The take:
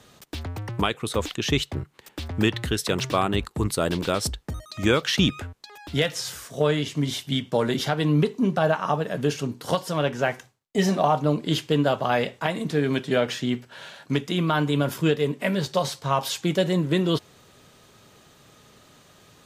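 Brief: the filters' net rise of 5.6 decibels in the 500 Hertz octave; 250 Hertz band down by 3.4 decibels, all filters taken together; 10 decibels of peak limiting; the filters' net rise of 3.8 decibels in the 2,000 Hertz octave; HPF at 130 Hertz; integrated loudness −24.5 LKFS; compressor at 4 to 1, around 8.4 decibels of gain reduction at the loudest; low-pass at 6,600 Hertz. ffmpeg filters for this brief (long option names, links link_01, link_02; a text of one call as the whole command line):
ffmpeg -i in.wav -af "highpass=130,lowpass=6600,equalizer=frequency=250:width_type=o:gain=-7.5,equalizer=frequency=500:width_type=o:gain=8.5,equalizer=frequency=2000:width_type=o:gain=4.5,acompressor=threshold=-22dB:ratio=4,volume=6dB,alimiter=limit=-12.5dB:level=0:latency=1" out.wav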